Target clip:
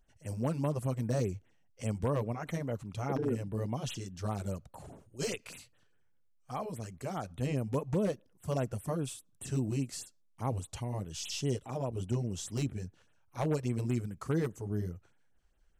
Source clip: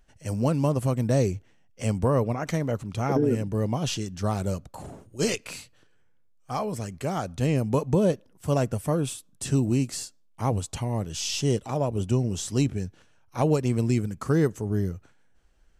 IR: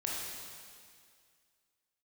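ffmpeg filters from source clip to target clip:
-af "aeval=exprs='0.178*(abs(mod(val(0)/0.178+3,4)-2)-1)':c=same,afftfilt=real='re*(1-between(b*sr/1024,200*pow(6000/200,0.5+0.5*sin(2*PI*4.9*pts/sr))/1.41,200*pow(6000/200,0.5+0.5*sin(2*PI*4.9*pts/sr))*1.41))':imag='im*(1-between(b*sr/1024,200*pow(6000/200,0.5+0.5*sin(2*PI*4.9*pts/sr))/1.41,200*pow(6000/200,0.5+0.5*sin(2*PI*4.9*pts/sr))*1.41))':win_size=1024:overlap=0.75,volume=-8dB"

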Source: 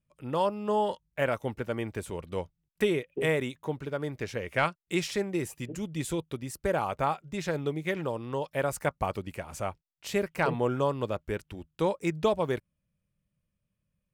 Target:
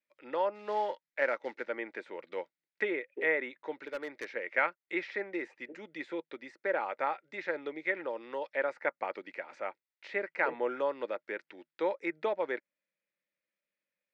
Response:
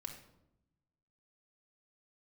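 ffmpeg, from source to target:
-filter_complex "[0:a]acrossover=split=2300[a][b];[b]acompressor=threshold=-55dB:ratio=6[c];[a][c]amix=inputs=2:normalize=0,asplit=3[d][e][f];[d]afade=t=out:st=0.54:d=0.02[g];[e]acrusher=bits=6:mode=log:mix=0:aa=0.000001,afade=t=in:st=0.54:d=0.02,afade=t=out:st=1.64:d=0.02[h];[f]afade=t=in:st=1.64:d=0.02[i];[g][h][i]amix=inputs=3:normalize=0,highpass=f=380:w=0.5412,highpass=f=380:w=1.3066,equalizer=f=420:t=q:w=4:g=-8,equalizer=f=700:t=q:w=4:g=-9,equalizer=f=1.1k:t=q:w=4:g=-10,equalizer=f=2k:t=q:w=4:g=7,equalizer=f=3k:t=q:w=4:g=-7,lowpass=f=4.4k:w=0.5412,lowpass=f=4.4k:w=1.3066,asettb=1/sr,asplit=3[j][k][l];[j]atrim=end=3.754[m];[k]atrim=start=3.75:end=4.28,asetpts=PTS-STARTPTS,afade=t=in:d=0.004:c=qsin,afade=t=out:st=0.526:d=0.004:c=qsin,volume=34dB,asoftclip=hard,volume=-34dB[n];[l]atrim=start=4.276[o];[m][n]acrossfade=d=0.004:c1=hsin:c2=qsin[p];[p][o]acrossfade=d=0.004:c1=qsin:c2=hsin,volume=2dB"

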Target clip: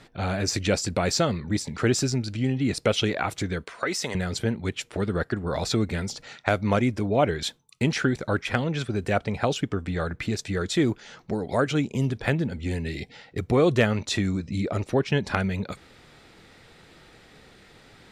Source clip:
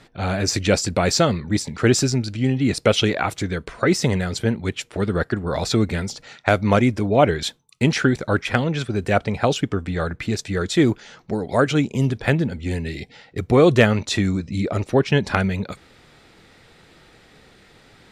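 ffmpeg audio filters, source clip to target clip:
-filter_complex "[0:a]asettb=1/sr,asplit=3[a][b][c];[a]atrim=end=3.644[d];[b]atrim=start=3.64:end=4.15,asetpts=PTS-STARTPTS,afade=t=in:d=0.004:c=qsin,afade=t=out:st=0.506:d=0.004:c=qsin,highpass=f=820:p=1[e];[c]atrim=start=4.146[f];[d][e]acrossfade=d=0.004:c1=hsin:c2=qsin[g];[g][f]acrossfade=d=0.004:c1=qsin:c2=hsin,asplit=2[h][i];[i]acompressor=threshold=-26dB:ratio=6,volume=1.5dB[j];[h][j]amix=inputs=2:normalize=0,volume=-8dB"

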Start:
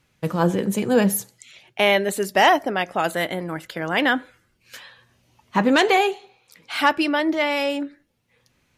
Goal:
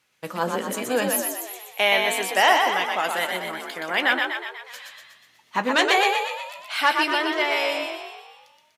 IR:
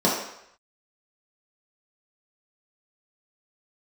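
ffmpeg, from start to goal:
-filter_complex "[0:a]highpass=f=880:p=1,asplit=2[a][b];[b]adelay=16,volume=-12dB[c];[a][c]amix=inputs=2:normalize=0,asplit=9[d][e][f][g][h][i][j][k][l];[e]adelay=122,afreqshift=45,volume=-4dB[m];[f]adelay=244,afreqshift=90,volume=-8.9dB[n];[g]adelay=366,afreqshift=135,volume=-13.8dB[o];[h]adelay=488,afreqshift=180,volume=-18.6dB[p];[i]adelay=610,afreqshift=225,volume=-23.5dB[q];[j]adelay=732,afreqshift=270,volume=-28.4dB[r];[k]adelay=854,afreqshift=315,volume=-33.3dB[s];[l]adelay=976,afreqshift=360,volume=-38.2dB[t];[d][m][n][o][p][q][r][s][t]amix=inputs=9:normalize=0"

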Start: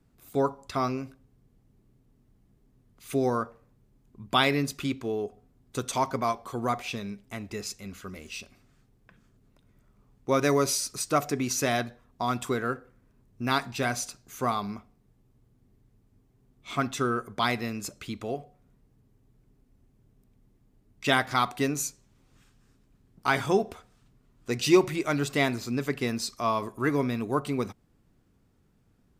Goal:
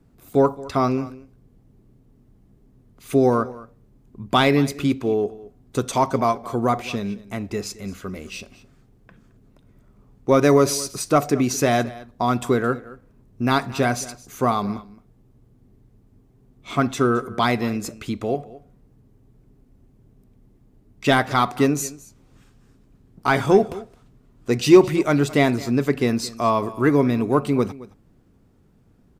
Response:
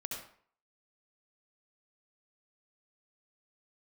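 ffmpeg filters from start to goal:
-filter_complex "[0:a]lowshelf=f=290:g=-6,asoftclip=type=tanh:threshold=-11.5dB,tiltshelf=f=790:g=5.5,asplit=2[a][b];[b]aecho=0:1:218:0.112[c];[a][c]amix=inputs=2:normalize=0,volume=8.5dB"

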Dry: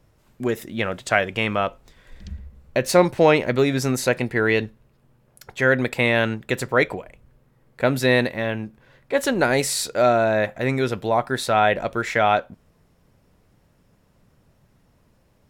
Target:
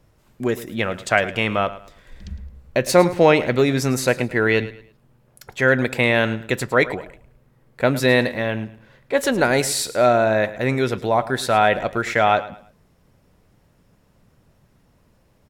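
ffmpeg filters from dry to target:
-af "aecho=1:1:108|216|324:0.158|0.0475|0.0143,volume=1.5dB"

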